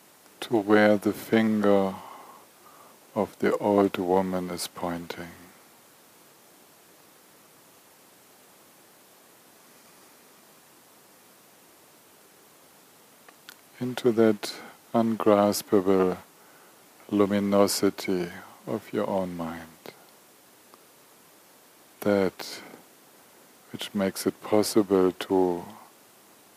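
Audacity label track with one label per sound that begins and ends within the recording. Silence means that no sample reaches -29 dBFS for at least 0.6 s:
3.160000	5.220000	sound
13.490000	16.140000	sound
17.120000	19.890000	sound
22.020000	22.540000	sound
23.740000	25.600000	sound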